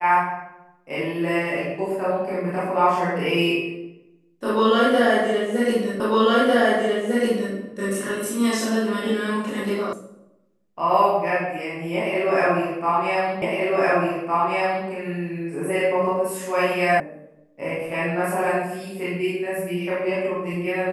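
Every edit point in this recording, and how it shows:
6 repeat of the last 1.55 s
9.93 sound cut off
13.42 repeat of the last 1.46 s
17 sound cut off

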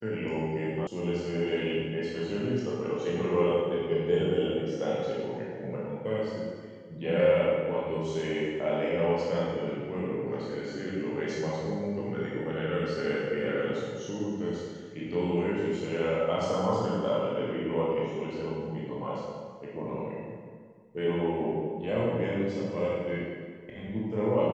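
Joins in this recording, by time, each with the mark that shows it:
0.87 sound cut off

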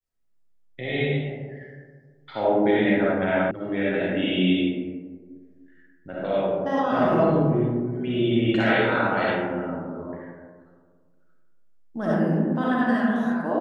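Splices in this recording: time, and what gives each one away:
3.51 sound cut off

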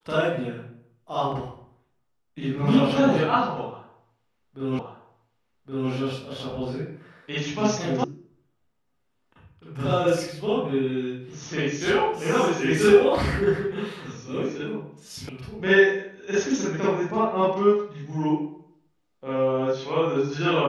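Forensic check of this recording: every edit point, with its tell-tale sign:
4.79 repeat of the last 1.12 s
8.04 sound cut off
15.29 sound cut off

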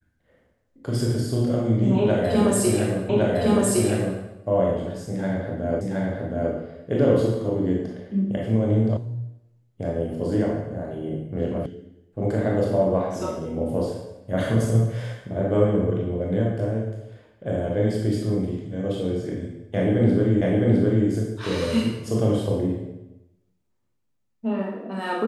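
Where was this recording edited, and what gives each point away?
3.09 repeat of the last 1.11 s
5.81 repeat of the last 0.72 s
8.97 sound cut off
11.66 sound cut off
20.41 repeat of the last 0.66 s

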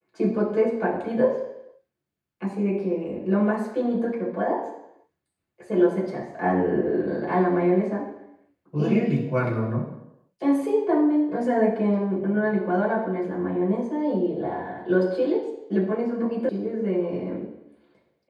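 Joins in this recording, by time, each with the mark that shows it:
16.49 sound cut off

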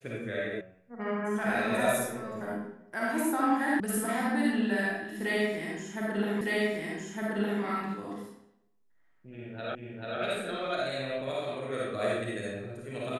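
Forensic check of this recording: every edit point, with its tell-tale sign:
0.61 sound cut off
3.8 sound cut off
6.41 repeat of the last 1.21 s
9.75 repeat of the last 0.44 s

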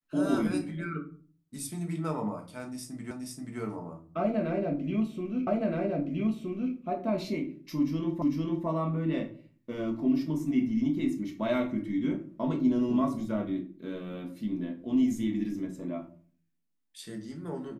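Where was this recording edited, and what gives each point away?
3.11 repeat of the last 0.48 s
5.47 repeat of the last 1.27 s
8.22 repeat of the last 0.45 s

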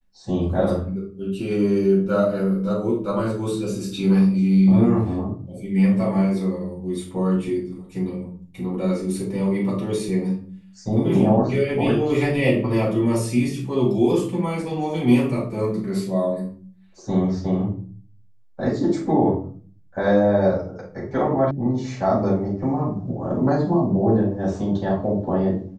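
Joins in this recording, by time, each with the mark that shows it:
21.51 sound cut off

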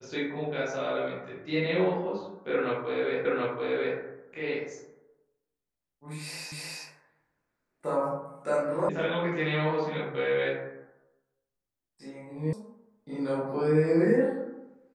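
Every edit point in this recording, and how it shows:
3.25 repeat of the last 0.73 s
6.52 repeat of the last 0.31 s
8.89 sound cut off
12.53 sound cut off

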